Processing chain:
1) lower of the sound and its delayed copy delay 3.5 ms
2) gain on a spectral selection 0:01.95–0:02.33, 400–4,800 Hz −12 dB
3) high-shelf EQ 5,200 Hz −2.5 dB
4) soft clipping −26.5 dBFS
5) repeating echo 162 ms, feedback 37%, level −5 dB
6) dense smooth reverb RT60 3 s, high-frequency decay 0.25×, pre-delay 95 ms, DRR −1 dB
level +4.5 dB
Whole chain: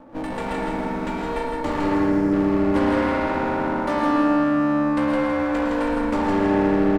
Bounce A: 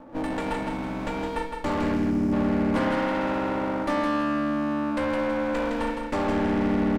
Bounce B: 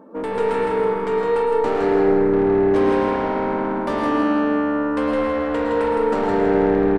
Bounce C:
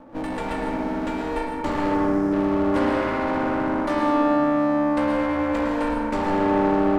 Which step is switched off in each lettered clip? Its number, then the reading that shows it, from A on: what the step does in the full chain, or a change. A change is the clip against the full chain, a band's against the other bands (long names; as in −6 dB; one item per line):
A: 6, change in crest factor −4.0 dB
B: 1, 500 Hz band +7.0 dB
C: 5, echo-to-direct ratio 3.5 dB to 1.0 dB